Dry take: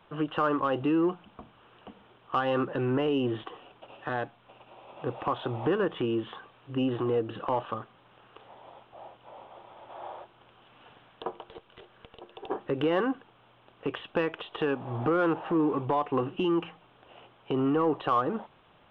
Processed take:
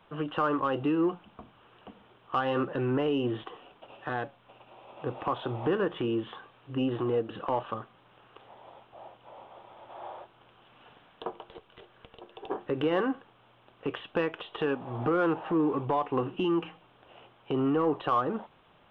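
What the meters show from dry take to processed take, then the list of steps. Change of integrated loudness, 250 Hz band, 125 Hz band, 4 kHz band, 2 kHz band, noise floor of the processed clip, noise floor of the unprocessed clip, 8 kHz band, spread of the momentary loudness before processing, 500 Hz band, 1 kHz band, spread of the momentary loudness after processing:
-1.0 dB, -1.0 dB, -1.0 dB, -1.0 dB, -1.0 dB, -61 dBFS, -60 dBFS, no reading, 20 LU, -1.0 dB, -1.0 dB, 19 LU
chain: flange 0.27 Hz, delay 3.9 ms, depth 7.4 ms, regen -82%; trim +3.5 dB

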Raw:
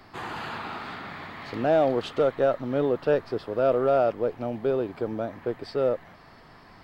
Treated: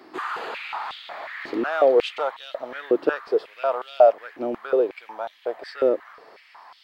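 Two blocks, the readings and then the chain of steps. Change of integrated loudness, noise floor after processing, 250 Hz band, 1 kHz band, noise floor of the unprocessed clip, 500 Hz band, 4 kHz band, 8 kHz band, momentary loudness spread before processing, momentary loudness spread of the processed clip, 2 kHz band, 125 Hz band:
+2.5 dB, -54 dBFS, -1.0 dB, +3.5 dB, -51 dBFS, +2.5 dB, +4.5 dB, no reading, 14 LU, 16 LU, +5.0 dB, under -15 dB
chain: step-sequenced high-pass 5.5 Hz 330–3300 Hz

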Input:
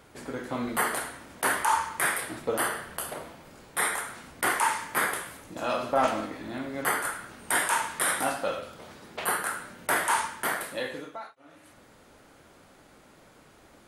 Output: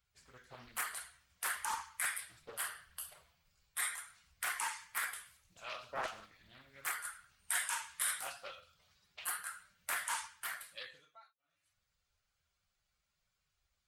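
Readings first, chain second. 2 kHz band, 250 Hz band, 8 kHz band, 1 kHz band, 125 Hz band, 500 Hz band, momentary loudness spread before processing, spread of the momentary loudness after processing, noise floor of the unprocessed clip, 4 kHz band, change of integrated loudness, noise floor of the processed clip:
-11.5 dB, -30.0 dB, -8.0 dB, -16.0 dB, -21.0 dB, -21.5 dB, 14 LU, 18 LU, -56 dBFS, -9.0 dB, -11.0 dB, -84 dBFS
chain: expander on every frequency bin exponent 1.5; amplifier tone stack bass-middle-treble 10-0-10; loudspeaker Doppler distortion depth 0.54 ms; trim -3 dB

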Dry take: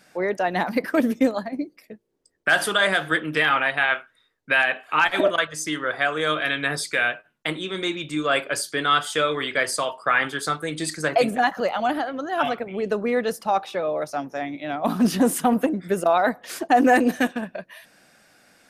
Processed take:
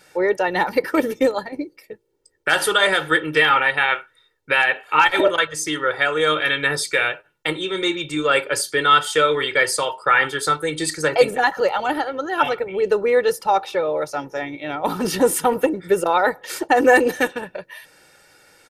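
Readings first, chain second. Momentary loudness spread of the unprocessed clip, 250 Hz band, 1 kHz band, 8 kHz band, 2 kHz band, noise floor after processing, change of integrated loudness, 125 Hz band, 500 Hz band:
9 LU, -2.0 dB, +3.5 dB, +4.5 dB, +3.0 dB, -61 dBFS, +3.5 dB, 0.0 dB, +5.0 dB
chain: comb 2.2 ms, depth 73%; trim +2.5 dB

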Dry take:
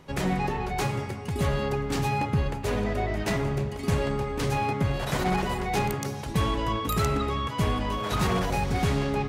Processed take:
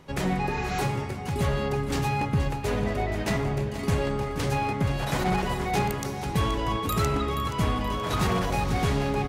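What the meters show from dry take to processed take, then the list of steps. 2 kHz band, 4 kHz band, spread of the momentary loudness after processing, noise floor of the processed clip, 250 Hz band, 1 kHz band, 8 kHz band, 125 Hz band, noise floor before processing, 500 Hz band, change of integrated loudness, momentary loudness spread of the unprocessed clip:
+0.5 dB, 0.0 dB, 3 LU, -33 dBFS, +0.5 dB, +0.5 dB, +0.5 dB, +0.5 dB, -35 dBFS, 0.0 dB, +0.5 dB, 3 LU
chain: feedback delay 476 ms, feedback 46%, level -11.5 dB; spectral replace 0.50–0.79 s, 1.1–7.7 kHz both

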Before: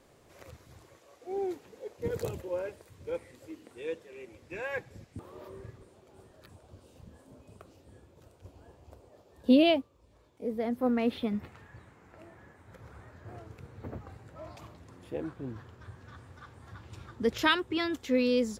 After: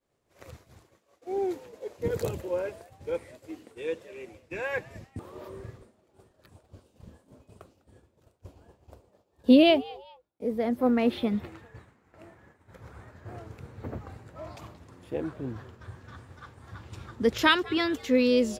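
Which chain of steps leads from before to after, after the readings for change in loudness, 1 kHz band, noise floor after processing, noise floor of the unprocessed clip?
+4.0 dB, +4.0 dB, -70 dBFS, -61 dBFS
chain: expander -48 dBFS; frequency-shifting echo 201 ms, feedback 33%, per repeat +120 Hz, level -22 dB; trim +4 dB

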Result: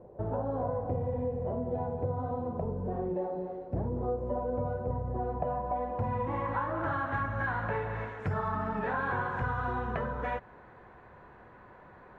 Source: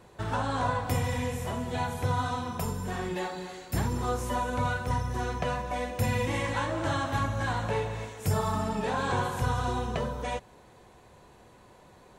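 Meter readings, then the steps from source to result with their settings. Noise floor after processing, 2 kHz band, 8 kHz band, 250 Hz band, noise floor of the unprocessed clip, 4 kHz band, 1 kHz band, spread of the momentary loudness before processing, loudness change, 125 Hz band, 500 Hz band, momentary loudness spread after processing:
-54 dBFS, -2.5 dB, under -35 dB, -3.0 dB, -55 dBFS, under -15 dB, -2.5 dB, 5 LU, -2.5 dB, -4.5 dB, 0.0 dB, 4 LU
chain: low-pass sweep 570 Hz -> 1.6 kHz, 4.93–7.19 s; compression 3:1, threshold -30 dBFS, peak gain reduction 7 dB

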